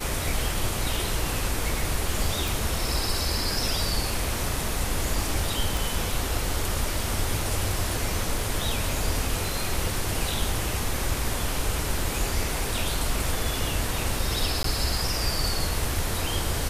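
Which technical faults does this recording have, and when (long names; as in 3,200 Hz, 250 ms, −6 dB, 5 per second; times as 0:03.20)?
0:02.48: click
0:05.77: click
0:14.63–0:14.64: drop-out 13 ms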